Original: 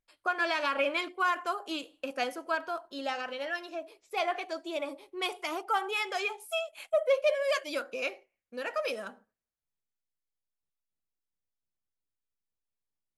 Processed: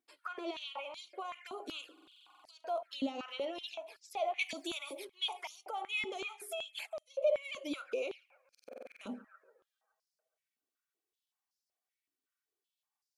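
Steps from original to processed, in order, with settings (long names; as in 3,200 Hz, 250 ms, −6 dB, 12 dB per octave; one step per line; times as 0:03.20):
downward compressor 6 to 1, threshold −37 dBFS, peak gain reduction 14.5 dB
bucket-brigade delay 140 ms, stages 2,048, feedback 62%, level −23.5 dB
brickwall limiter −35.5 dBFS, peak gain reduction 9 dB
flanger swept by the level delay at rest 2.7 ms, full sweep at −42 dBFS
0:04.39–0:05.05: spectral tilt +4 dB per octave
buffer that repeats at 0:01.93/0:08.50, samples 2,048, times 10
high-pass on a step sequencer 5.3 Hz 250–5,000 Hz
level +4 dB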